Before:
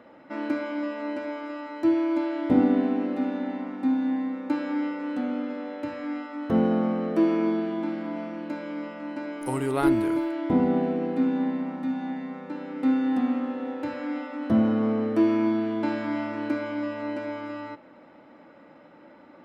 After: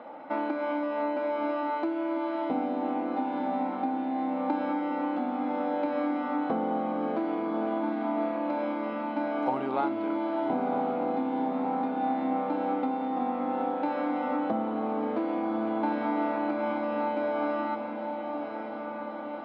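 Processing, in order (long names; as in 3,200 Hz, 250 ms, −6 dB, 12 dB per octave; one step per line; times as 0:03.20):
downward compressor, threshold −32 dBFS, peak gain reduction 16 dB
loudspeaker in its box 300–3,500 Hz, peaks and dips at 380 Hz −6 dB, 790 Hz +9 dB, 1,800 Hz −9 dB, 2,800 Hz −6 dB
feedback delay with all-pass diffusion 1,064 ms, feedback 71%, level −7.5 dB
level +7 dB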